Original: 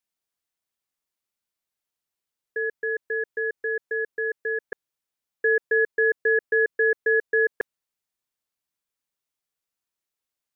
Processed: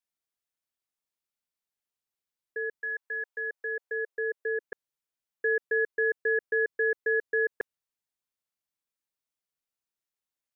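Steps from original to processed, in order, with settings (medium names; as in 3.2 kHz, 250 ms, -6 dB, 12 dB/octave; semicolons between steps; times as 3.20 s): 2.80–4.60 s: resonant high-pass 990 Hz -> 380 Hz, resonance Q 1.5; trim -5.5 dB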